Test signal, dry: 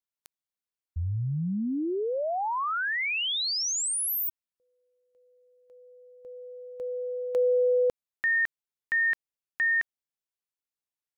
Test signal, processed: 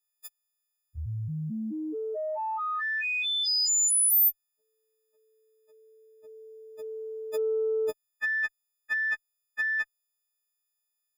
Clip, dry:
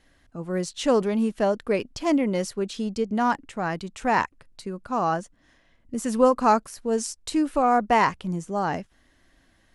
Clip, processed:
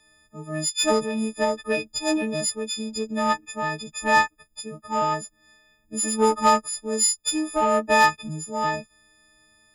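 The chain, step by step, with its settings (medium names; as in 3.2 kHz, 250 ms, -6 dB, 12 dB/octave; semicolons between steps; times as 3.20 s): partials quantised in pitch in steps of 6 st; Chebyshev shaper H 5 -19 dB, 6 -42 dB, 7 -20 dB, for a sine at -3.5 dBFS; trim -2.5 dB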